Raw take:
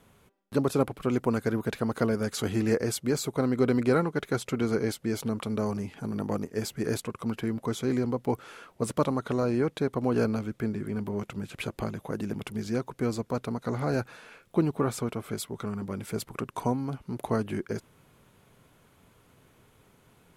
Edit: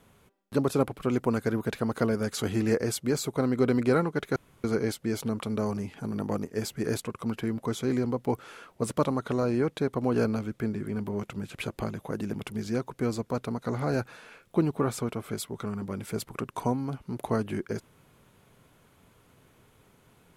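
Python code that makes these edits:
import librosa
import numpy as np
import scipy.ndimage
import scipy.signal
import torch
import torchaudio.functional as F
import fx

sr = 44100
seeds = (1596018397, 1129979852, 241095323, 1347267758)

y = fx.edit(x, sr, fx.room_tone_fill(start_s=4.36, length_s=0.28), tone=tone)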